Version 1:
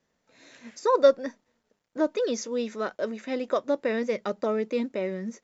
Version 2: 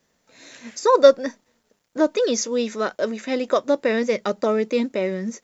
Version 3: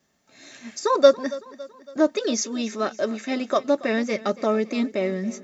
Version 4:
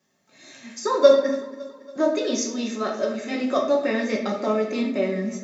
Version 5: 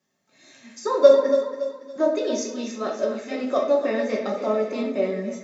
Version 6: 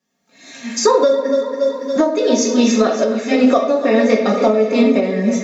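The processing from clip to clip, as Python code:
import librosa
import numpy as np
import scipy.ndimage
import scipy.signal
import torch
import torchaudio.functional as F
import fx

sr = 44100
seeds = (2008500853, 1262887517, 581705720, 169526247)

y1 = fx.high_shelf(x, sr, hz=4800.0, db=8.0)
y1 = F.gain(torch.from_numpy(y1), 6.0).numpy()
y2 = fx.notch_comb(y1, sr, f0_hz=490.0)
y2 = fx.echo_feedback(y2, sr, ms=279, feedback_pct=52, wet_db=-18.5)
y3 = scipy.signal.sosfilt(scipy.signal.butter(2, 100.0, 'highpass', fs=sr, output='sos'), y2)
y3 = fx.room_shoebox(y3, sr, seeds[0], volume_m3=140.0, walls='mixed', distance_m=1.0)
y3 = F.gain(torch.from_numpy(y3), -3.5).numpy()
y4 = fx.echo_feedback(y3, sr, ms=281, feedback_pct=45, wet_db=-11.0)
y4 = fx.dynamic_eq(y4, sr, hz=560.0, q=0.74, threshold_db=-30.0, ratio=4.0, max_db=6)
y4 = F.gain(torch.from_numpy(y4), -5.0).numpy()
y5 = fx.recorder_agc(y4, sr, target_db=-4.5, rise_db_per_s=25.0, max_gain_db=30)
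y5 = y5 + 0.55 * np.pad(y5, (int(4.2 * sr / 1000.0), 0))[:len(y5)]
y5 = F.gain(torch.from_numpy(y5), -1.0).numpy()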